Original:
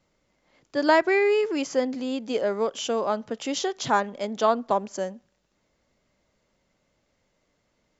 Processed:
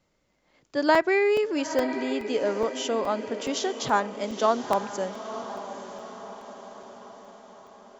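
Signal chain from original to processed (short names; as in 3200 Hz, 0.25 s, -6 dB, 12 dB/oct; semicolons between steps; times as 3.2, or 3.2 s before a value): on a send: diffused feedback echo 0.901 s, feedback 53%, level -11 dB; on the sum: crackling interface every 0.42 s, samples 128, zero, from 0.53; gain -1 dB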